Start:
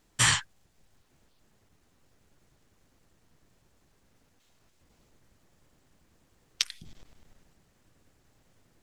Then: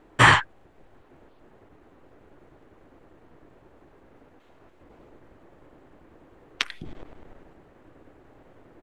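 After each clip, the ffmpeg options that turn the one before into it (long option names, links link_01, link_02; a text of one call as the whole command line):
ffmpeg -i in.wav -af "firequalizer=gain_entry='entry(200,0);entry(300,10);entry(5200,-17)':delay=0.05:min_phase=1,volume=9dB" out.wav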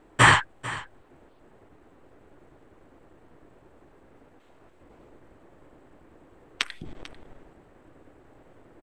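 ffmpeg -i in.wav -af "equalizer=frequency=8100:width=6:gain=10,aecho=1:1:444:0.133,volume=-1dB" out.wav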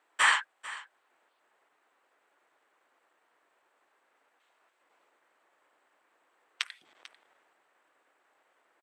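ffmpeg -i in.wav -af "highpass=1100,volume=-5.5dB" out.wav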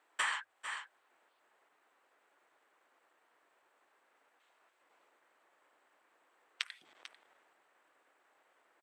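ffmpeg -i in.wav -af "bandreject=frequency=50:width_type=h:width=6,bandreject=frequency=100:width_type=h:width=6,acompressor=threshold=-31dB:ratio=6,volume=-1dB" out.wav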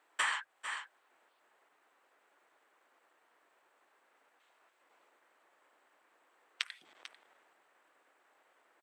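ffmpeg -i in.wav -af "highpass=110,volume=1.5dB" out.wav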